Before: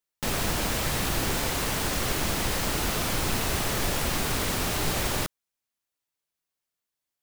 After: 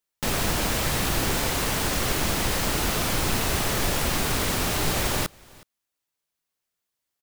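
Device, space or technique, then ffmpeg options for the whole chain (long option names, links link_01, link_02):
ducked delay: -filter_complex "[0:a]asplit=3[link_01][link_02][link_03];[link_02]adelay=368,volume=-5dB[link_04];[link_03]apad=whole_len=334773[link_05];[link_04][link_05]sidechaincompress=threshold=-49dB:ratio=5:attack=16:release=1080[link_06];[link_01][link_06]amix=inputs=2:normalize=0,volume=2.5dB"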